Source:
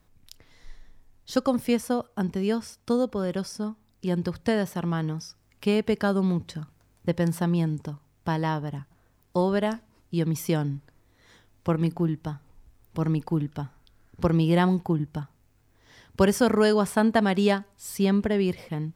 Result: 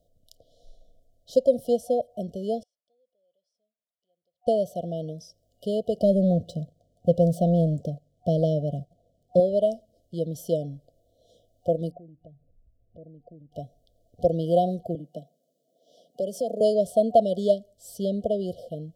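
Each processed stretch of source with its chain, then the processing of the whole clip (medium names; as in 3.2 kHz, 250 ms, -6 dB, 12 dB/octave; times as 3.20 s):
2.63–4.47 s: compression 2.5:1, threshold -46 dBFS + band-pass filter 2 kHz, Q 10
5.96–9.40 s: median filter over 3 samples + peaking EQ 170 Hz +7.5 dB 1.4 oct + waveshaping leveller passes 1
11.91–13.52 s: resonances exaggerated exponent 1.5 + distance through air 270 m + compression 3:1, threshold -45 dBFS
14.95–16.61 s: steep high-pass 160 Hz 48 dB/octave + compression 3:1, threshold -27 dBFS
whole clip: FFT band-reject 730–2900 Hz; high-order bell 660 Hz +15 dB 1.1 oct; trim -7 dB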